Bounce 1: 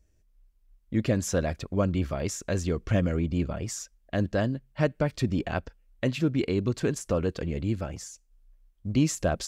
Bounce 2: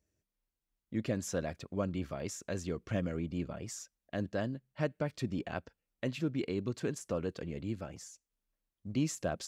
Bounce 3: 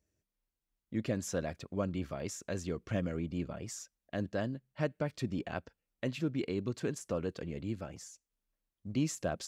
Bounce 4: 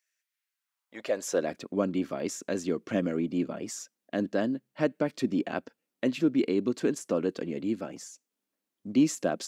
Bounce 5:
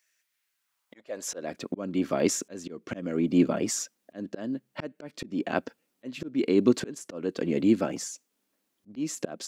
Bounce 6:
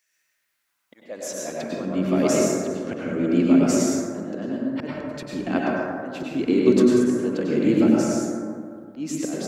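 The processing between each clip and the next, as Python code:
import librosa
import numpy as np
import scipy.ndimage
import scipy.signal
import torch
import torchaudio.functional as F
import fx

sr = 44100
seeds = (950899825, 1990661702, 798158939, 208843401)

y1 = scipy.signal.sosfilt(scipy.signal.butter(2, 110.0, 'highpass', fs=sr, output='sos'), x)
y1 = y1 * 10.0 ** (-8.0 / 20.0)
y2 = y1
y3 = fx.filter_sweep_highpass(y2, sr, from_hz=1800.0, to_hz=260.0, start_s=0.5, end_s=1.54, q=1.9)
y3 = y3 * 10.0 ** (5.0 / 20.0)
y4 = fx.auto_swell(y3, sr, attack_ms=494.0)
y4 = y4 * 10.0 ** (8.5 / 20.0)
y5 = fx.rev_plate(y4, sr, seeds[0], rt60_s=2.2, hf_ratio=0.3, predelay_ms=85, drr_db=-5.0)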